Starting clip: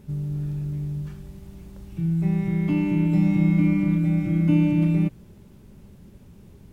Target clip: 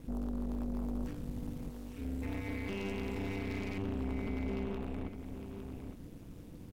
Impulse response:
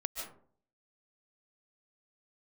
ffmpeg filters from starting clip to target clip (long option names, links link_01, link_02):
-filter_complex "[0:a]asettb=1/sr,asplit=3[link_01][link_02][link_03];[link_01]atrim=end=1.704[link_04];[link_02]atrim=start=1.7:end=3.78,asetpts=PTS-STARTPTS,afade=type=in:duration=0.004:curve=qsin,afade=type=out:start_time=2.076:duration=0.004:curve=qsin,highpass=frequency=750:poles=1[link_05];[link_03]atrim=start=3.776[link_06];[link_04][link_05]acrossfade=duration=0.004:curve1=hsin:curve2=qsin[link_07];[link_07][link_06]acrossfade=duration=0.004:curve1=qsin:curve2=hsin,acompressor=threshold=-26dB:ratio=6,alimiter=level_in=3.5dB:limit=-24dB:level=0:latency=1:release=13,volume=-3.5dB,aeval=exprs='val(0)*sin(2*PI*95*n/s)':channel_layout=same,aeval=exprs='0.0422*(cos(1*acos(clip(val(0)/0.0422,-1,1)))-cos(1*PI/2))+0.00596*(cos(4*acos(clip(val(0)/0.0422,-1,1)))-cos(4*PI/2))+0.0075*(cos(5*acos(clip(val(0)/0.0422,-1,1)))-cos(5*PI/2))+0.00266*(cos(7*acos(clip(val(0)/0.0422,-1,1)))-cos(7*PI/2))':channel_layout=same,aecho=1:1:858:0.355,volume=-2dB"